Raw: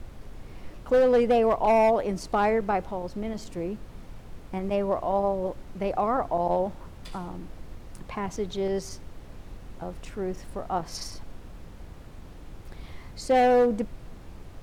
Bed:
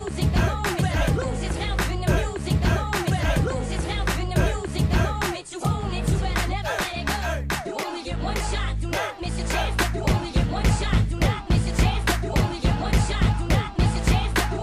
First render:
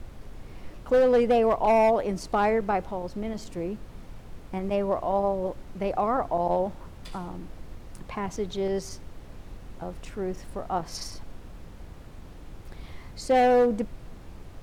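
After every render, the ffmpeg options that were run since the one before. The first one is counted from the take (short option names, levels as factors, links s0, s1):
-af anull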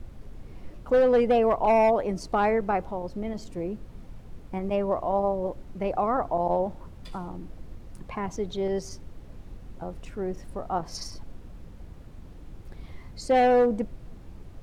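-af "afftdn=nr=6:nf=-45"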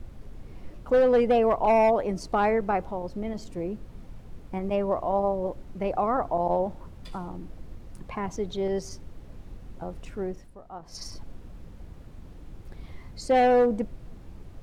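-filter_complex "[0:a]asplit=3[s0][s1][s2];[s0]atrim=end=10.52,asetpts=PTS-STARTPTS,afade=t=out:st=10.22:d=0.3:silence=0.237137[s3];[s1]atrim=start=10.52:end=10.81,asetpts=PTS-STARTPTS,volume=0.237[s4];[s2]atrim=start=10.81,asetpts=PTS-STARTPTS,afade=t=in:d=0.3:silence=0.237137[s5];[s3][s4][s5]concat=n=3:v=0:a=1"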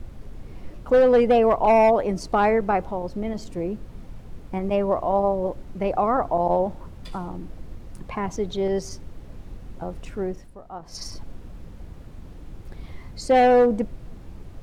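-af "volume=1.58"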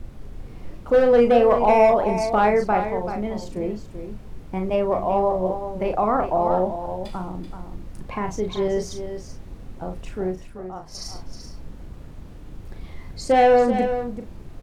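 -filter_complex "[0:a]asplit=2[s0][s1];[s1]adelay=38,volume=0.473[s2];[s0][s2]amix=inputs=2:normalize=0,asplit=2[s3][s4];[s4]aecho=0:1:383:0.335[s5];[s3][s5]amix=inputs=2:normalize=0"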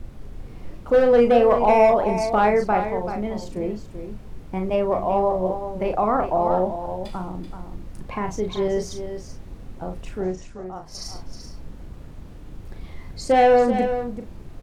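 -filter_complex "[0:a]asettb=1/sr,asplit=3[s0][s1][s2];[s0]atrim=end=10.234[s3];[s1]atrim=start=10.23:end=10.64,asetpts=PTS-STARTPTS,afade=t=in:d=0.004:c=qsin,afade=t=out:st=0.406:d=0.004:c=qsin,lowpass=f=6600:t=q:w=3.3[s4];[s2]atrim=start=10.636[s5];[s3][s4]acrossfade=d=0.004:c1=hsin:c2=qsin[s6];[s6][s5]acrossfade=d=0.004:c1=qsin:c2=hsin"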